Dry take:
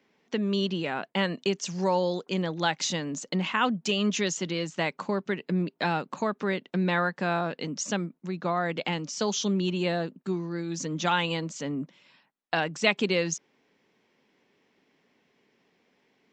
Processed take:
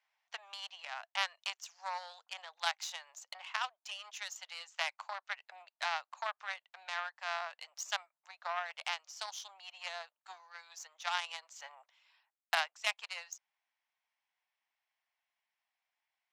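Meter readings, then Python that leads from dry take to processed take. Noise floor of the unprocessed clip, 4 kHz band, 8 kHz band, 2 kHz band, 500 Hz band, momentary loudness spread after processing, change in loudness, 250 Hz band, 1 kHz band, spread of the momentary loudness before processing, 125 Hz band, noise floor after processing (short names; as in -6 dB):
-71 dBFS, -7.5 dB, -11.0 dB, -7.5 dB, -20.5 dB, 13 LU, -11.0 dB, under -40 dB, -9.0 dB, 7 LU, under -40 dB, under -85 dBFS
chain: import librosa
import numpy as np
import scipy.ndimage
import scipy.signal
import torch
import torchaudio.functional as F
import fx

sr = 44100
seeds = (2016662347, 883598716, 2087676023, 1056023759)

y = fx.rider(x, sr, range_db=10, speed_s=0.5)
y = fx.cheby_harmonics(y, sr, harmonics=(2, 6, 7, 8), levels_db=(-18, -21, -20, -22), full_scale_db=-7.0)
y = scipy.signal.sosfilt(scipy.signal.butter(8, 690.0, 'highpass', fs=sr, output='sos'), y)
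y = F.gain(torch.from_numpy(y), -4.5).numpy()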